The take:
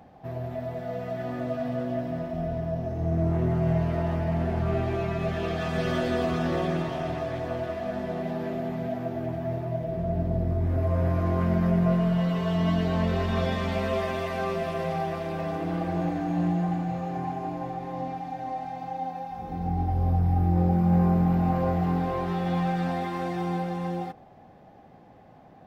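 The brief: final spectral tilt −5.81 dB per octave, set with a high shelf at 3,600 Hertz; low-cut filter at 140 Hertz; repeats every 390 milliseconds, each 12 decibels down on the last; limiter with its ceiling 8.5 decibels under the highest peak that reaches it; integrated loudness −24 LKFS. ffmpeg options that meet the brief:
ffmpeg -i in.wav -af "highpass=140,highshelf=frequency=3600:gain=-4.5,alimiter=limit=-22dB:level=0:latency=1,aecho=1:1:390|780|1170:0.251|0.0628|0.0157,volume=7dB" out.wav

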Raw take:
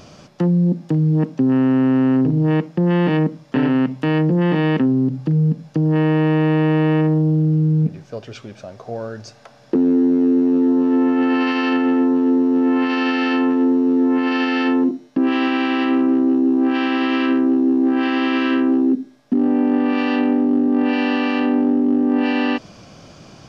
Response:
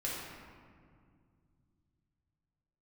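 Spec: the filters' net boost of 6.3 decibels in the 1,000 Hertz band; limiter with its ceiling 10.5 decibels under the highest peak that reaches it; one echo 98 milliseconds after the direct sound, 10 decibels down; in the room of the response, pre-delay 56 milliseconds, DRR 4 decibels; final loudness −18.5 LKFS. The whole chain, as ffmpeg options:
-filter_complex "[0:a]equalizer=frequency=1000:width_type=o:gain=8,alimiter=limit=-16dB:level=0:latency=1,aecho=1:1:98:0.316,asplit=2[link_01][link_02];[1:a]atrim=start_sample=2205,adelay=56[link_03];[link_02][link_03]afir=irnorm=-1:irlink=0,volume=-8dB[link_04];[link_01][link_04]amix=inputs=2:normalize=0,volume=4dB"

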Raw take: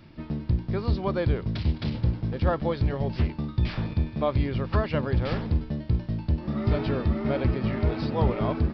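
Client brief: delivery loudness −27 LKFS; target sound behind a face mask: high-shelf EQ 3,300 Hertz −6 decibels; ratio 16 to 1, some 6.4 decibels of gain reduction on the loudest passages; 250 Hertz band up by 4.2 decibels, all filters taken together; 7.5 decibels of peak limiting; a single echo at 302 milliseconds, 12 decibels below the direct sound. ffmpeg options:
ffmpeg -i in.wav -af "equalizer=frequency=250:width_type=o:gain=5.5,acompressor=threshold=-23dB:ratio=16,alimiter=limit=-22.5dB:level=0:latency=1,highshelf=frequency=3300:gain=-6,aecho=1:1:302:0.251,volume=5dB" out.wav

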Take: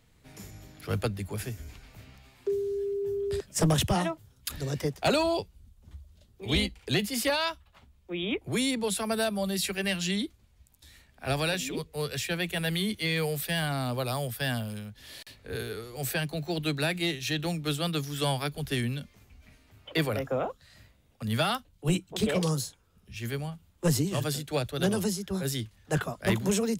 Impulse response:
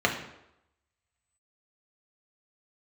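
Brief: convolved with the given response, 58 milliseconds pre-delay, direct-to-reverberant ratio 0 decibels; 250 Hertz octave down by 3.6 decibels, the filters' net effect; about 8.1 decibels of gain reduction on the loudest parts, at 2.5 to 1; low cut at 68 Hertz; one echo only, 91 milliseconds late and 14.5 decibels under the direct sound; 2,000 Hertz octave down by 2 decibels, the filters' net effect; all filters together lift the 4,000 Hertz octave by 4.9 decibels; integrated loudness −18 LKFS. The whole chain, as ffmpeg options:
-filter_complex "[0:a]highpass=68,equalizer=frequency=250:width_type=o:gain=-5.5,equalizer=frequency=2000:width_type=o:gain=-5,equalizer=frequency=4000:width_type=o:gain=7.5,acompressor=threshold=-34dB:ratio=2.5,aecho=1:1:91:0.188,asplit=2[link_01][link_02];[1:a]atrim=start_sample=2205,adelay=58[link_03];[link_02][link_03]afir=irnorm=-1:irlink=0,volume=-14dB[link_04];[link_01][link_04]amix=inputs=2:normalize=0,volume=15dB"

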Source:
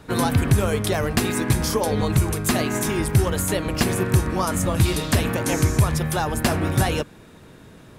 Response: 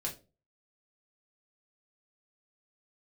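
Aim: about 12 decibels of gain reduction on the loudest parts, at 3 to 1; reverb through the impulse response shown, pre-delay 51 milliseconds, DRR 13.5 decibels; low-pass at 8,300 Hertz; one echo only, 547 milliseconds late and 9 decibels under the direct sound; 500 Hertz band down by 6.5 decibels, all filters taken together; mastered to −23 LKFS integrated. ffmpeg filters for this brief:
-filter_complex "[0:a]lowpass=8300,equalizer=frequency=500:width_type=o:gain=-8.5,acompressor=threshold=-30dB:ratio=3,aecho=1:1:547:0.355,asplit=2[link_01][link_02];[1:a]atrim=start_sample=2205,adelay=51[link_03];[link_02][link_03]afir=irnorm=-1:irlink=0,volume=-15dB[link_04];[link_01][link_04]amix=inputs=2:normalize=0,volume=8dB"

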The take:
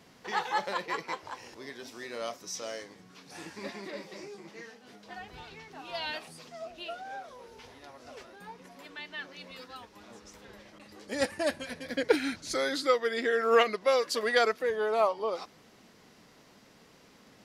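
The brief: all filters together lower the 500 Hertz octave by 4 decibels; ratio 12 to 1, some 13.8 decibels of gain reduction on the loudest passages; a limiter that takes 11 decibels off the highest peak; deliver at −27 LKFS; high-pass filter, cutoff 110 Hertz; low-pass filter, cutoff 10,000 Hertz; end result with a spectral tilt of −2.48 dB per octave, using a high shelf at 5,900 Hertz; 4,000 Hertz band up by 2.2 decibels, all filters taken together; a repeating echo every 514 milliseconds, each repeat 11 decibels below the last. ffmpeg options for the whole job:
ffmpeg -i in.wav -af "highpass=110,lowpass=10000,equalizer=frequency=500:width_type=o:gain=-4.5,equalizer=frequency=4000:width_type=o:gain=4.5,highshelf=frequency=5900:gain=-4.5,acompressor=threshold=-34dB:ratio=12,alimiter=level_in=9dB:limit=-24dB:level=0:latency=1,volume=-9dB,aecho=1:1:514|1028|1542:0.282|0.0789|0.0221,volume=17dB" out.wav

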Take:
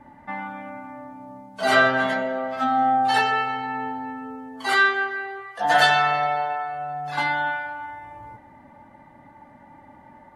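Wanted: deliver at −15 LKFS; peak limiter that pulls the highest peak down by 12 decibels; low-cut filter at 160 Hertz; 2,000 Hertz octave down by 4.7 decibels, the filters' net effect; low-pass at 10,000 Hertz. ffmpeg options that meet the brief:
ffmpeg -i in.wav -af "highpass=160,lowpass=10000,equalizer=frequency=2000:width_type=o:gain=-6.5,volume=13.5dB,alimiter=limit=-5dB:level=0:latency=1" out.wav

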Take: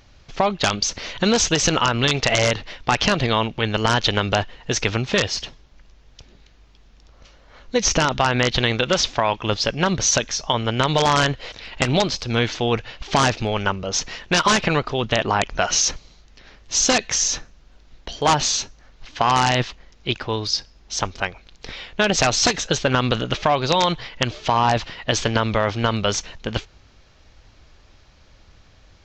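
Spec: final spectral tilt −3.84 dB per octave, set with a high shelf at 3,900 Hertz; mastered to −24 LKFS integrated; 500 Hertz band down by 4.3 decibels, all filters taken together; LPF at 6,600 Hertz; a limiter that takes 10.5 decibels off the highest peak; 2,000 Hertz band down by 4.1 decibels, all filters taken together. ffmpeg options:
ffmpeg -i in.wav -af "lowpass=6600,equalizer=frequency=500:width_type=o:gain=-5,equalizer=frequency=2000:width_type=o:gain=-4,highshelf=frequency=3900:gain=-5,volume=4dB,alimiter=limit=-13dB:level=0:latency=1" out.wav

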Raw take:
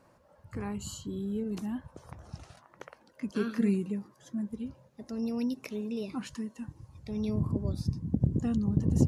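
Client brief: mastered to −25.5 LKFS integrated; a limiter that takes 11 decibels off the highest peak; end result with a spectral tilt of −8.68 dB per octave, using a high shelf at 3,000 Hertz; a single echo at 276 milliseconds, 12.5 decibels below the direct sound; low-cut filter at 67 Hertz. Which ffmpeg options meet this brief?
ffmpeg -i in.wav -af "highpass=67,highshelf=frequency=3000:gain=-8,alimiter=limit=-22.5dB:level=0:latency=1,aecho=1:1:276:0.237,volume=9.5dB" out.wav

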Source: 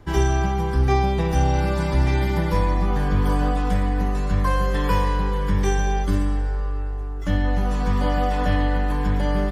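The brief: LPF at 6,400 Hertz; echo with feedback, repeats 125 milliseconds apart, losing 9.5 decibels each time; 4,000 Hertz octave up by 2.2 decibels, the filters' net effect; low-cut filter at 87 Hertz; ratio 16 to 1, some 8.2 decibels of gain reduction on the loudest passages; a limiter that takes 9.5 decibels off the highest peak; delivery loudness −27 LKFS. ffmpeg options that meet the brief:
ffmpeg -i in.wav -af "highpass=87,lowpass=6400,equalizer=frequency=4000:width_type=o:gain=3.5,acompressor=threshold=-25dB:ratio=16,alimiter=level_in=2.5dB:limit=-24dB:level=0:latency=1,volume=-2.5dB,aecho=1:1:125|250|375|500:0.335|0.111|0.0365|0.012,volume=8dB" out.wav

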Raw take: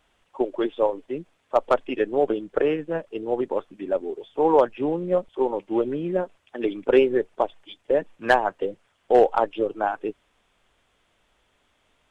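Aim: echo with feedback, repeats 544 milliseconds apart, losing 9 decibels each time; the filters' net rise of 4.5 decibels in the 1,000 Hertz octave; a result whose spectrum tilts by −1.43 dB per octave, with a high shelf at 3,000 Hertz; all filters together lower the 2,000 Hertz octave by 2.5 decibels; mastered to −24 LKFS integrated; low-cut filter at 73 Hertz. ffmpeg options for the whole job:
ffmpeg -i in.wav -af "highpass=73,equalizer=frequency=1000:width_type=o:gain=7.5,equalizer=frequency=2000:width_type=o:gain=-5,highshelf=frequency=3000:gain=-4.5,aecho=1:1:544|1088|1632|2176:0.355|0.124|0.0435|0.0152,volume=-1.5dB" out.wav

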